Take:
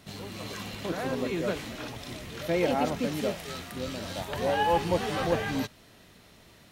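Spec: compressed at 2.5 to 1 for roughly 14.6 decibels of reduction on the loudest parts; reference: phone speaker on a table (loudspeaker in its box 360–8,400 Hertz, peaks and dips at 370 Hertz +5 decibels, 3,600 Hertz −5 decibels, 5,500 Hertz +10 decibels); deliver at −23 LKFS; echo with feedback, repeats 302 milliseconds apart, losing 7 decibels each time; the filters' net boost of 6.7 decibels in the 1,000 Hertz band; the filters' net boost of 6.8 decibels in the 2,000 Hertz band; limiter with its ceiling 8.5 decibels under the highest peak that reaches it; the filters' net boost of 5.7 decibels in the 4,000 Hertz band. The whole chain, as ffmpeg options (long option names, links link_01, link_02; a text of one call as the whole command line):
ffmpeg -i in.wav -af "equalizer=frequency=1000:width_type=o:gain=7.5,equalizer=frequency=2000:width_type=o:gain=5,equalizer=frequency=4000:width_type=o:gain=5.5,acompressor=threshold=-39dB:ratio=2.5,alimiter=level_in=6dB:limit=-24dB:level=0:latency=1,volume=-6dB,highpass=frequency=360:width=0.5412,highpass=frequency=360:width=1.3066,equalizer=frequency=370:width_type=q:width=4:gain=5,equalizer=frequency=3600:width_type=q:width=4:gain=-5,equalizer=frequency=5500:width_type=q:width=4:gain=10,lowpass=frequency=8400:width=0.5412,lowpass=frequency=8400:width=1.3066,aecho=1:1:302|604|906|1208|1510:0.447|0.201|0.0905|0.0407|0.0183,volume=16dB" out.wav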